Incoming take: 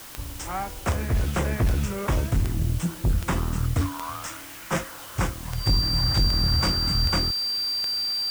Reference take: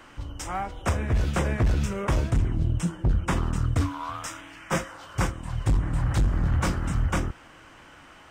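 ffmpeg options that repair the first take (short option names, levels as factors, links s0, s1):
-af "adeclick=t=4,bandreject=f=4700:w=30,afwtdn=0.0071"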